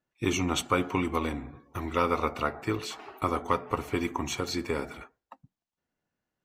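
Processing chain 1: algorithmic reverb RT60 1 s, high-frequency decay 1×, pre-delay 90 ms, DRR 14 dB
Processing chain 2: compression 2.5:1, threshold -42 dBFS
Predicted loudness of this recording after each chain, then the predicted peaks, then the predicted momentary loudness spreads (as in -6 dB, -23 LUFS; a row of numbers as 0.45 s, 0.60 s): -30.5 LUFS, -42.0 LUFS; -11.0 dBFS, -23.0 dBFS; 11 LU, 9 LU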